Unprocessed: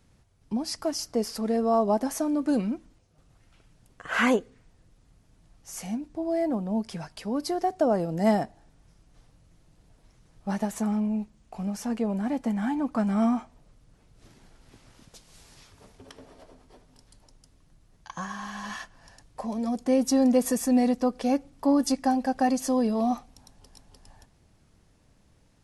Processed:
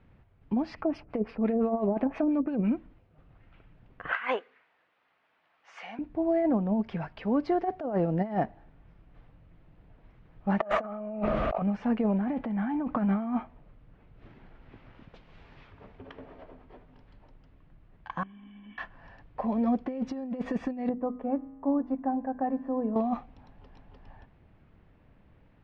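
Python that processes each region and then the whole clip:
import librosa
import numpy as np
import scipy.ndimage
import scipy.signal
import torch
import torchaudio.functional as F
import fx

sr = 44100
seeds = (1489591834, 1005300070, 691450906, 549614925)

y = fx.chain(x, sr, fx.peak_eq(hz=2500.0, db=10.5, octaves=0.3),
    fx.filter_lfo_lowpass(shape='sine', hz=5.8, low_hz=430.0, high_hz=5300.0, q=0.77),
    fx.resample_bad(factor=3, down='filtered', up='zero_stuff'), at=(0.75, 2.72))
y = fx.chain(y, sr, fx.highpass(hz=960.0, slope=12),
    fx.over_compress(threshold_db=-31.0, ratio=-0.5), at=(4.12, 5.99))
y = fx.chain(y, sr, fx.bass_treble(bass_db=-10, treble_db=-3),
    fx.small_body(hz=(620.0, 1200.0), ring_ms=30, db=17),
    fx.env_flatten(amount_pct=70), at=(10.6, 11.62))
y = fx.chain(y, sr, fx.over_compress(threshold_db=-32.0, ratio=-1.0),
    fx.resample_linear(factor=4), at=(12.17, 12.96))
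y = fx.chain(y, sr, fx.formant_cascade(vowel='i'),
    fx.peak_eq(hz=170.0, db=-7.0, octaves=0.62), at=(18.23, 18.78))
y = fx.chain(y, sr, fx.lowpass(hz=1100.0, slope=12),
    fx.hum_notches(base_hz=50, count=6),
    fx.comb_fb(f0_hz=54.0, decay_s=1.5, harmonics='odd', damping=0.0, mix_pct=60), at=(20.89, 22.96))
y = scipy.signal.sosfilt(scipy.signal.butter(4, 2700.0, 'lowpass', fs=sr, output='sos'), y)
y = fx.over_compress(y, sr, threshold_db=-26.0, ratio=-0.5)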